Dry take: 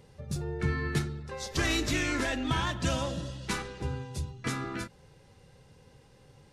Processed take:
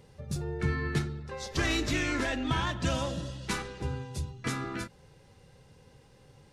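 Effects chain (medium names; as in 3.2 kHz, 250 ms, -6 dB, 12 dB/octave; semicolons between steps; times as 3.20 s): 0.75–2.95 s: treble shelf 8.1 kHz -7.5 dB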